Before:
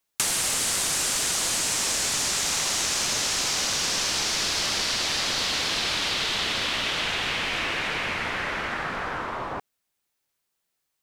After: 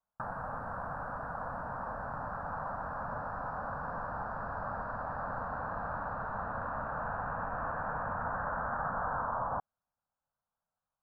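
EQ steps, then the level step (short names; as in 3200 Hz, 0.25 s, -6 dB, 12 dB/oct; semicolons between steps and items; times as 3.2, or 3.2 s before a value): elliptic low-pass 1600 Hz, stop band 50 dB; fixed phaser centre 880 Hz, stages 4; 0.0 dB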